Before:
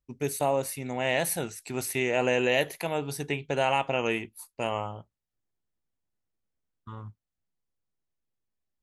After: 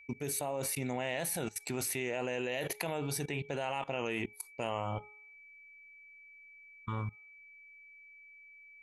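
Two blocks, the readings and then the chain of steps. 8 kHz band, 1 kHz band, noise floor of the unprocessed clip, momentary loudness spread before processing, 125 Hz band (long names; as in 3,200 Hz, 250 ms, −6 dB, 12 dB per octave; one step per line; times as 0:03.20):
−2.0 dB, −8.5 dB, below −85 dBFS, 18 LU, −3.0 dB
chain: steady tone 2,300 Hz −54 dBFS
output level in coarse steps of 21 dB
hum removal 420.3 Hz, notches 3
level +6.5 dB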